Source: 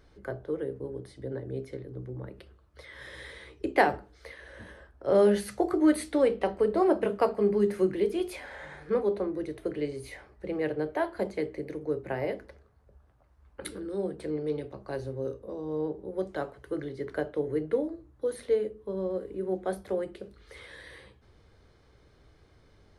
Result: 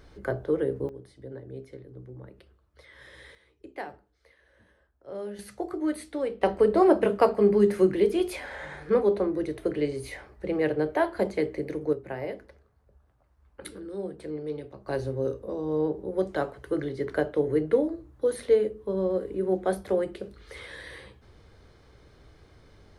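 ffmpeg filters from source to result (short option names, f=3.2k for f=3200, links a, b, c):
-af "asetnsamples=n=441:p=0,asendcmd='0.89 volume volume -5dB;3.35 volume volume -15dB;5.39 volume volume -6dB;6.43 volume volume 4.5dB;11.93 volume volume -2.5dB;14.87 volume volume 5dB',volume=6.5dB"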